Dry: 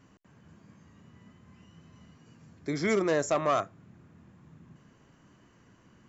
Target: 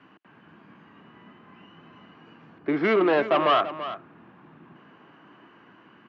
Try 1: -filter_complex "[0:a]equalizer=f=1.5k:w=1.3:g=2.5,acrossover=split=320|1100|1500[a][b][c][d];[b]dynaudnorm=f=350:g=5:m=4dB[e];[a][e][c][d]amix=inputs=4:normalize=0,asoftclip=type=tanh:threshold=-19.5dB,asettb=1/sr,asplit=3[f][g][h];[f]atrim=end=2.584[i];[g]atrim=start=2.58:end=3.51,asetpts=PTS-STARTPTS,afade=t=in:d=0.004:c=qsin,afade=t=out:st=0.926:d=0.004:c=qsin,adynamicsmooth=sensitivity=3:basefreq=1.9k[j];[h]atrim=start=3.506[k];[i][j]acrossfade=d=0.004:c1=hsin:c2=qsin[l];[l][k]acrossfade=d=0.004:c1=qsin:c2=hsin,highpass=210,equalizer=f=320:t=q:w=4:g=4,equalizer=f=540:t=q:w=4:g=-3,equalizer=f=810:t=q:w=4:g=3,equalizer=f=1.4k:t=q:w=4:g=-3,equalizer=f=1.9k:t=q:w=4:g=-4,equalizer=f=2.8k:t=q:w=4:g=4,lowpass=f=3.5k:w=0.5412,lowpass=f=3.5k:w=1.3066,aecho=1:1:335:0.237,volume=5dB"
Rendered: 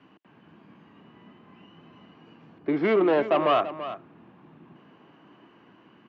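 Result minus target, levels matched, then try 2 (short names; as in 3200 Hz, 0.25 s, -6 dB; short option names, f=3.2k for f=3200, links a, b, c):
2000 Hz band -3.5 dB
-filter_complex "[0:a]equalizer=f=1.5k:w=1.3:g=9.5,acrossover=split=320|1100|1500[a][b][c][d];[b]dynaudnorm=f=350:g=5:m=4dB[e];[a][e][c][d]amix=inputs=4:normalize=0,asoftclip=type=tanh:threshold=-19.5dB,asettb=1/sr,asplit=3[f][g][h];[f]atrim=end=2.584[i];[g]atrim=start=2.58:end=3.51,asetpts=PTS-STARTPTS,afade=t=in:d=0.004:c=qsin,afade=t=out:st=0.926:d=0.004:c=qsin,adynamicsmooth=sensitivity=3:basefreq=1.9k[j];[h]atrim=start=3.506[k];[i][j]acrossfade=d=0.004:c1=hsin:c2=qsin[l];[l][k]acrossfade=d=0.004:c1=qsin:c2=hsin,highpass=210,equalizer=f=320:t=q:w=4:g=4,equalizer=f=540:t=q:w=4:g=-3,equalizer=f=810:t=q:w=4:g=3,equalizer=f=1.4k:t=q:w=4:g=-3,equalizer=f=1.9k:t=q:w=4:g=-4,equalizer=f=2.8k:t=q:w=4:g=4,lowpass=f=3.5k:w=0.5412,lowpass=f=3.5k:w=1.3066,aecho=1:1:335:0.237,volume=5dB"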